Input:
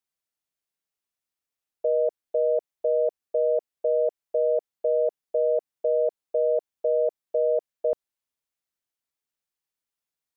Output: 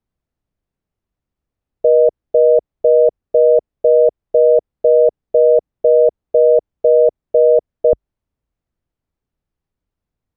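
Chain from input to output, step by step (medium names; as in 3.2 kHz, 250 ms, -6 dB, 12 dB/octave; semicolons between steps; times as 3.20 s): tilt EQ -5.5 dB/octave; trim +7.5 dB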